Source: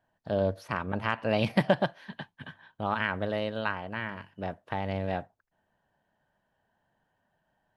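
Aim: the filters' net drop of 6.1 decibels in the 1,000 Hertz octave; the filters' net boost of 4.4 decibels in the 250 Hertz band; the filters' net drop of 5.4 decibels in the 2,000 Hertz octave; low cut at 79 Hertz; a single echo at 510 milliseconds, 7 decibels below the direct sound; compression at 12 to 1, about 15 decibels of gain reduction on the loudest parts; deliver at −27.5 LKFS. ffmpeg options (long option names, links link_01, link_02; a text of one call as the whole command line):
ffmpeg -i in.wav -af "highpass=79,equalizer=frequency=250:width_type=o:gain=6.5,equalizer=frequency=1000:width_type=o:gain=-8,equalizer=frequency=2000:width_type=o:gain=-4,acompressor=threshold=-32dB:ratio=12,aecho=1:1:510:0.447,volume=11.5dB" out.wav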